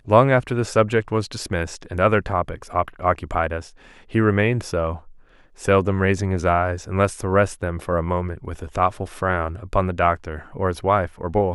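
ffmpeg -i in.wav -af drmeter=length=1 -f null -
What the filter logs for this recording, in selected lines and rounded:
Channel 1: DR: 11.5
Overall DR: 11.5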